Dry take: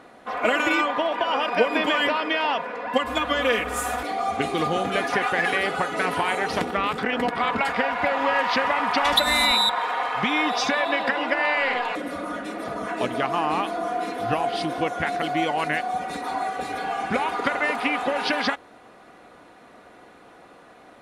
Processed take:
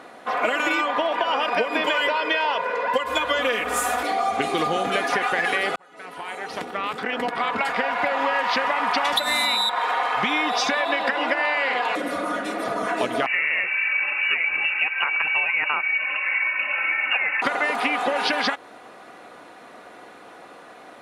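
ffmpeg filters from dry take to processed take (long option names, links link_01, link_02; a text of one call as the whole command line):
ffmpeg -i in.wav -filter_complex "[0:a]asettb=1/sr,asplit=3[link_01][link_02][link_03];[link_01]atrim=end=1.844[link_04];[link_02]atrim=start=1.84:end=3.39,asetpts=PTS-STARTPTS,afade=type=in:duration=0.004:curve=qsin,afade=type=out:start_time=1.546:duration=0.004:curve=qsin,aecho=1:1:2:0.56,atrim=end_sample=68355[link_05];[link_03]atrim=start=3.386[link_06];[link_04][link_05]acrossfade=duration=0.004:curve1=hsin:curve2=qsin[link_07];[link_07][link_06]acrossfade=duration=0.004:curve1=qsin:curve2=hsin,asettb=1/sr,asplit=3[link_08][link_09][link_10];[link_08]atrim=end=13.264[link_11];[link_09]atrim=start=13.26:end=17.42,asetpts=PTS-STARTPTS,afade=type=in:duration=0.004:curve=qsin,afade=type=out:start_time=4.156:duration=0.004:curve=qsin,lowpass=frequency=2600:width_type=q:width=0.5098,lowpass=frequency=2600:width_type=q:width=0.6013,lowpass=frequency=2600:width_type=q:width=0.9,lowpass=frequency=2600:width_type=q:width=2.563,afreqshift=-3000[link_12];[link_10]atrim=start=17.416[link_13];[link_11][link_12]acrossfade=duration=0.004:curve1=hsin:curve2=qsin[link_14];[link_14][link_13]acrossfade=duration=0.004:curve1=qsin:curve2=hsin,asplit=2[link_15][link_16];[link_15]atrim=end=5.76,asetpts=PTS-STARTPTS,afade=type=out:start_time=5.756:duration=0.004:curve=hsin[link_17];[link_16]atrim=start=5.76,asetpts=PTS-STARTPTS,afade=type=in:duration=2.85[link_18];[link_17][link_18]concat=n=2:v=0:a=1,highpass=70,lowshelf=frequency=210:gain=-10,acompressor=threshold=-25dB:ratio=6,volume=6dB" out.wav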